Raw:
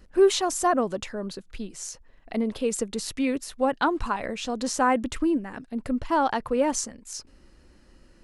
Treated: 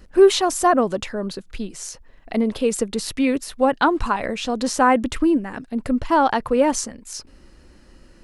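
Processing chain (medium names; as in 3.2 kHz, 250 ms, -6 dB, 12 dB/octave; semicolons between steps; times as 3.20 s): dynamic bell 6.9 kHz, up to -4 dB, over -47 dBFS, Q 1.8; trim +6 dB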